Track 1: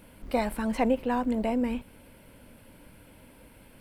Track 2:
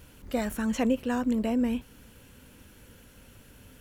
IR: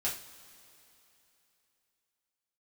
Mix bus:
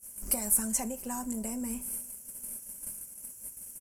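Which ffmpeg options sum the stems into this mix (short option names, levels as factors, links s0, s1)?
-filter_complex "[0:a]agate=range=0.0501:threshold=0.00316:ratio=16:detection=peak,aecho=1:1:5:0.34,acompressor=threshold=0.0178:ratio=10,volume=0.841,asplit=3[s0][s1][s2];[s1]volume=0.178[s3];[1:a]highpass=47,agate=range=0.0224:threshold=0.00398:ratio=3:detection=peak,adelay=5.1,volume=0.224[s4];[s2]apad=whole_len=167857[s5];[s4][s5]sidechaincompress=threshold=0.01:ratio=8:attack=16:release=791[s6];[2:a]atrim=start_sample=2205[s7];[s3][s7]afir=irnorm=-1:irlink=0[s8];[s0][s6][s8]amix=inputs=3:normalize=0,lowpass=11000,aexciter=amount=14.6:drive=10:freq=6100"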